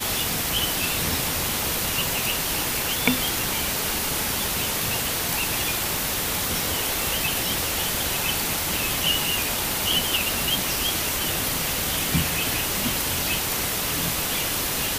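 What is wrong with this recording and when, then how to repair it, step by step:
7.02 s: pop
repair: de-click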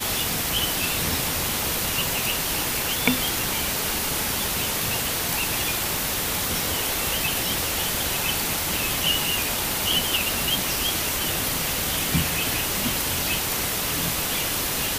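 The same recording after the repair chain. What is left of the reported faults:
nothing left

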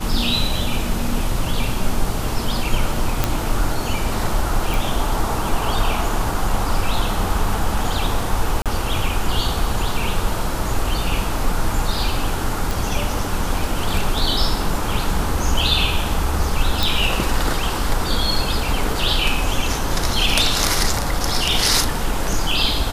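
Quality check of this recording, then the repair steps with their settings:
3.24 s: pop -2 dBFS
4.74 s: pop
8.62–8.66 s: dropout 37 ms
12.71 s: pop
16.83 s: pop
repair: de-click; interpolate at 8.62 s, 37 ms

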